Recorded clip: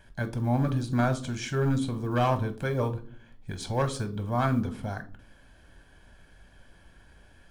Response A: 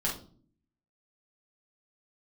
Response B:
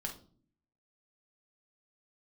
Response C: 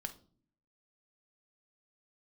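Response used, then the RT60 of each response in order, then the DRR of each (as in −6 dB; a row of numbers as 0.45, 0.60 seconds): C; non-exponential decay, non-exponential decay, non-exponential decay; −3.5, 2.5, 8.5 decibels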